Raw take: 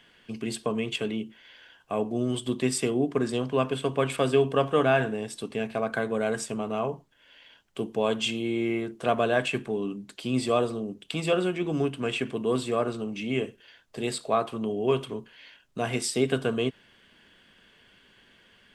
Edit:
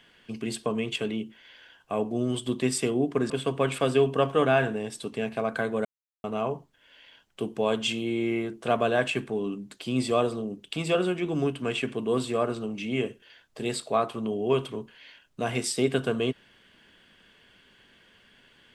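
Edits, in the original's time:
3.3–3.68 cut
6.23–6.62 mute

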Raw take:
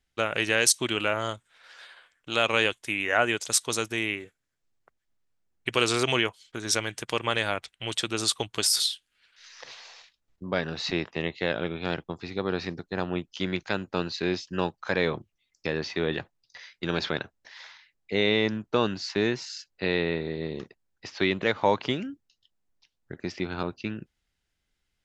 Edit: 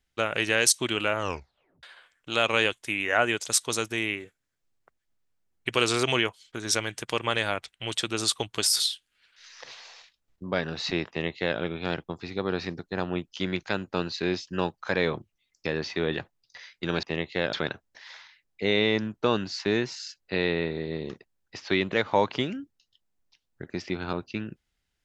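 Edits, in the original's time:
1.18 tape stop 0.65 s
11.09–11.59 copy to 17.03

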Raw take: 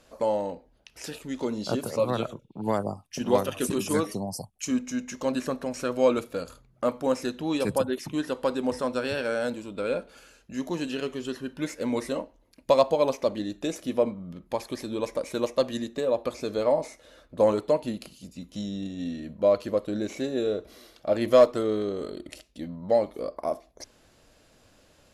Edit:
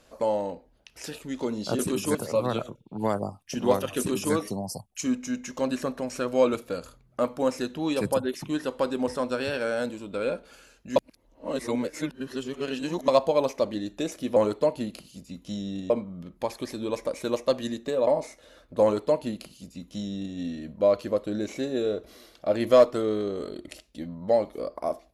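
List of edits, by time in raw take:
3.62–3.98 copy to 1.79
10.6–12.72 reverse
16.17–16.68 cut
17.43–18.97 copy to 14

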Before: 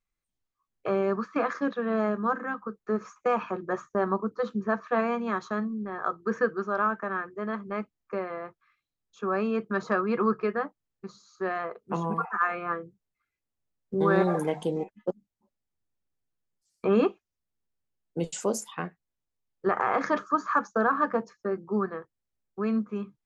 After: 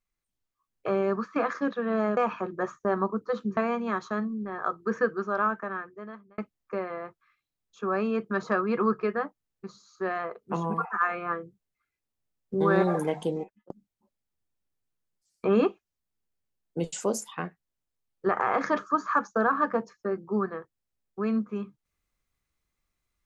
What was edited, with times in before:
2.17–3.27 cut
4.67–4.97 cut
6.88–7.78 fade out
14.69–15.1 fade out

